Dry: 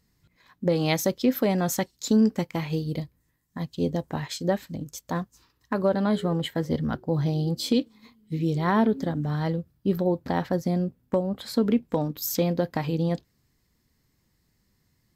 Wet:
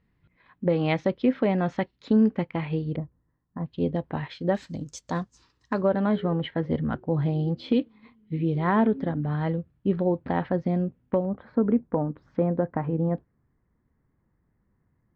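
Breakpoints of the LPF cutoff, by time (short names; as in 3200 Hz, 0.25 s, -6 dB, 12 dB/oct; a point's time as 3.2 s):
LPF 24 dB/oct
2900 Hz
from 2.96 s 1400 Hz
from 3.66 s 3100 Hz
from 4.55 s 7300 Hz
from 5.81 s 2900 Hz
from 11.25 s 1600 Hz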